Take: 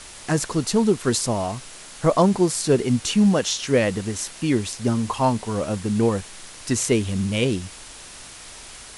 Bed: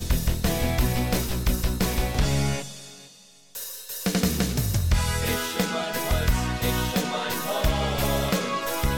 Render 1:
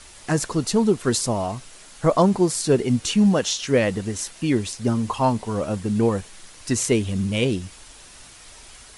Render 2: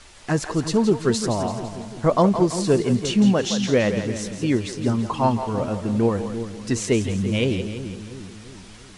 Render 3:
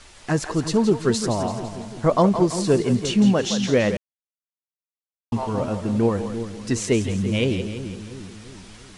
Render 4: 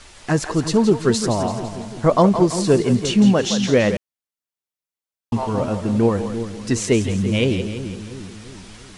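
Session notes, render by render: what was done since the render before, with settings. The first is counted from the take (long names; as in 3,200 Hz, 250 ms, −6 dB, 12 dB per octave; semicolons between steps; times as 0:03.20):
broadband denoise 6 dB, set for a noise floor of −41 dBFS
high-frequency loss of the air 58 metres; echo with a time of its own for lows and highs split 400 Hz, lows 345 ms, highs 168 ms, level −9 dB
0:03.97–0:05.32: silence
level +3 dB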